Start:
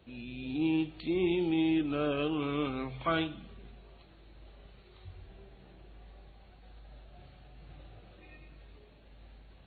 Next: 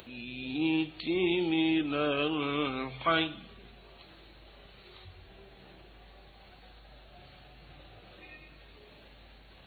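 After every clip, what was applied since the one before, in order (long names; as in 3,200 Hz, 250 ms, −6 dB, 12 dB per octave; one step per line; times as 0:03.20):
upward compression, threshold −47 dBFS
spectral tilt +2 dB per octave
level +3.5 dB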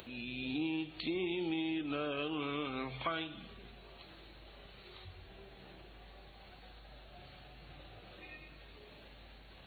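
downward compressor 10 to 1, threshold −32 dBFS, peak gain reduction 10.5 dB
level −1 dB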